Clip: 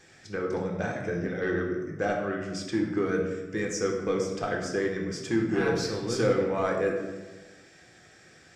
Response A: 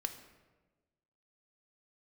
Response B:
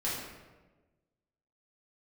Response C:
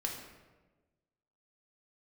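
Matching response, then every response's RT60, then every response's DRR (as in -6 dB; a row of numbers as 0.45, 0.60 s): C; 1.3, 1.3, 1.3 s; 7.5, -8.5, 0.0 dB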